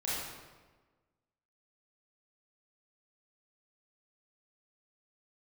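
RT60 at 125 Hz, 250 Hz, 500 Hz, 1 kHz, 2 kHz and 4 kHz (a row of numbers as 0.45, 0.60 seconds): 1.5, 1.5, 1.4, 1.3, 1.1, 0.95 seconds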